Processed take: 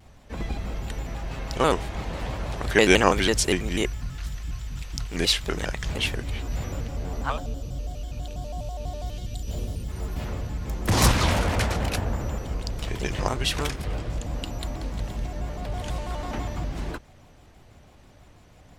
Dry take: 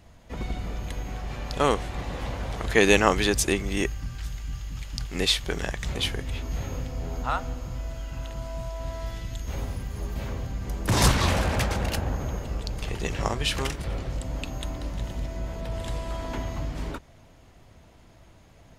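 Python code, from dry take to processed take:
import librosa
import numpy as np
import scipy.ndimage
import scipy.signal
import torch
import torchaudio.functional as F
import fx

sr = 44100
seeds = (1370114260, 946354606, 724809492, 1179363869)

y = fx.spec_box(x, sr, start_s=7.32, length_s=2.57, low_hz=710.0, high_hz=2600.0, gain_db=-11)
y = fx.vibrato_shape(y, sr, shape='square', rate_hz=6.1, depth_cents=160.0)
y = F.gain(torch.from_numpy(y), 1.0).numpy()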